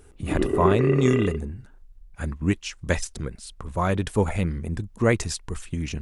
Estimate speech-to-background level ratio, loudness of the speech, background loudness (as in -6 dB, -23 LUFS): -1.0 dB, -26.5 LUFS, -25.5 LUFS